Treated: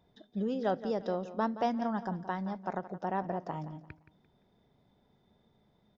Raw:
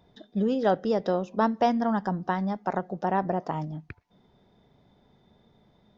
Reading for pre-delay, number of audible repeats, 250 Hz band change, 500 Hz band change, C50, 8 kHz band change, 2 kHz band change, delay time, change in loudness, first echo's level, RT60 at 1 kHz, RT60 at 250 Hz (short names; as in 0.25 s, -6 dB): none, 3, -7.5 dB, -7.5 dB, none, n/a, -7.5 dB, 0.172 s, -7.5 dB, -14.0 dB, none, none